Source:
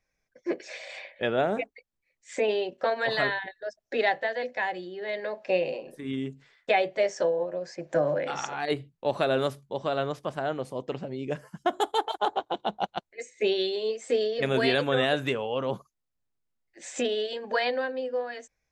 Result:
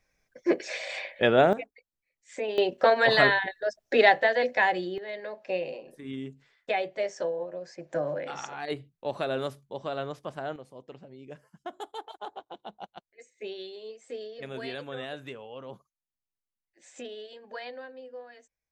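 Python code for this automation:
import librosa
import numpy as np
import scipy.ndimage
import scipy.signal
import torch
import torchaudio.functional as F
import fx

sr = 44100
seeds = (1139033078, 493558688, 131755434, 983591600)

y = fx.gain(x, sr, db=fx.steps((0.0, 5.5), (1.53, -6.0), (2.58, 6.0), (4.98, -5.0), (10.56, -13.0)))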